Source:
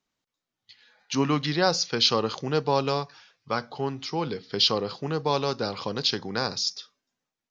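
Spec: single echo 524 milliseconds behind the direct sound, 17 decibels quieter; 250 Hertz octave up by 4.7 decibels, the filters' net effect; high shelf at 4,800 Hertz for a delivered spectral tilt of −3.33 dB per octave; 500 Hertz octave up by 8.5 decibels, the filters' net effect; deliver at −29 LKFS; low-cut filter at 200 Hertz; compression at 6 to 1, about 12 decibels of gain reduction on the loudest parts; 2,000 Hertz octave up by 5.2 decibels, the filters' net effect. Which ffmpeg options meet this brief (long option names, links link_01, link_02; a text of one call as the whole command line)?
ffmpeg -i in.wav -af "highpass=200,equalizer=frequency=250:width_type=o:gain=4.5,equalizer=frequency=500:width_type=o:gain=8.5,equalizer=frequency=2000:width_type=o:gain=6,highshelf=frequency=4800:gain=3.5,acompressor=threshold=-26dB:ratio=6,aecho=1:1:524:0.141,volume=1dB" out.wav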